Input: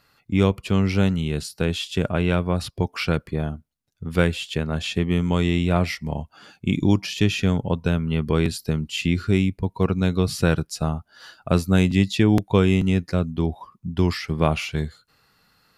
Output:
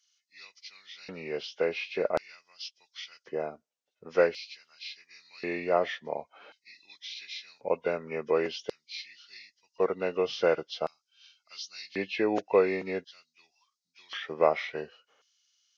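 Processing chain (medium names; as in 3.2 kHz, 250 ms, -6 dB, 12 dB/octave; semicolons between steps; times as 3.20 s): knee-point frequency compression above 1.4 kHz 1.5:1; LFO high-pass square 0.46 Hz 510–4600 Hz; trim -5.5 dB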